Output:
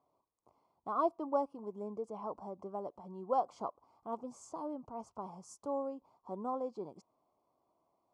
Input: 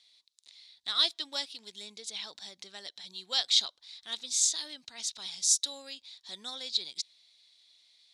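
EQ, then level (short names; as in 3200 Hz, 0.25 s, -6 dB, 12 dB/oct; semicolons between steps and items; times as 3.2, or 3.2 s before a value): elliptic low-pass 1100 Hz, stop band 40 dB; +13.0 dB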